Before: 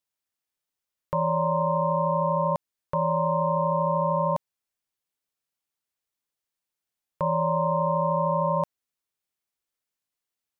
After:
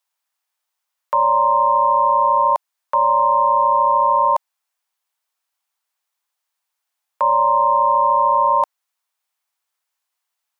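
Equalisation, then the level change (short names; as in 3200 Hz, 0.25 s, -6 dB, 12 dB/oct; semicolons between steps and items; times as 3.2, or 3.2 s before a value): resonant high-pass 860 Hz, resonance Q 1.7; +7.5 dB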